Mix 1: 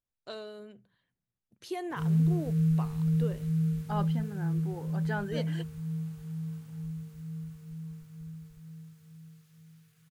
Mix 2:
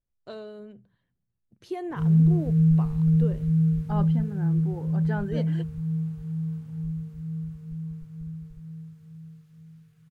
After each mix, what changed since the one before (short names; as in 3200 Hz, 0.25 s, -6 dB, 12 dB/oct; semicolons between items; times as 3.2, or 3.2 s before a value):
master: add tilt -2.5 dB/oct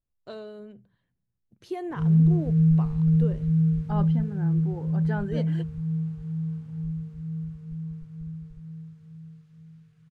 background: add air absorption 55 m